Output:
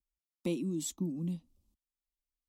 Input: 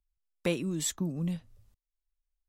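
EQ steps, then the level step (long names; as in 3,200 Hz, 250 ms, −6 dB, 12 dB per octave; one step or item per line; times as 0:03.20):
high-pass filter 88 Hz 6 dB per octave
low shelf with overshoot 510 Hz +6 dB, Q 3
phaser with its sweep stopped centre 430 Hz, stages 6
−6.0 dB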